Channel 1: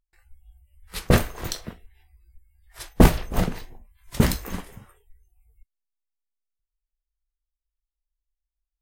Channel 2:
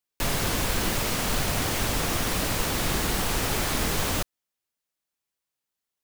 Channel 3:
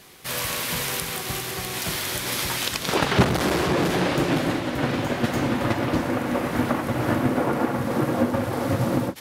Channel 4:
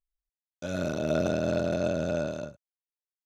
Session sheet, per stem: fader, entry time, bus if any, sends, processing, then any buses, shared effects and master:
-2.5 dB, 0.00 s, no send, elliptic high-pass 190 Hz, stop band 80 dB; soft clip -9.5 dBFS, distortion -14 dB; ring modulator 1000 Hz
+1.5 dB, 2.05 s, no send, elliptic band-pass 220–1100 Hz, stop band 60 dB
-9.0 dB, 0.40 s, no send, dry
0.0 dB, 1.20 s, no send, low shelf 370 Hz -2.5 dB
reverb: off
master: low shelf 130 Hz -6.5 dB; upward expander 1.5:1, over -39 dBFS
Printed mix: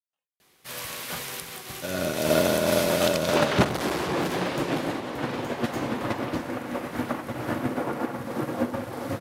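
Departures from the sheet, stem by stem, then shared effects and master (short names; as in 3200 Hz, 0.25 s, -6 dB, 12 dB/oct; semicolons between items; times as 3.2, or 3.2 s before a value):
stem 1 -2.5 dB -> -10.5 dB; stem 3 -9.0 dB -> -1.0 dB; stem 4 0.0 dB -> +8.0 dB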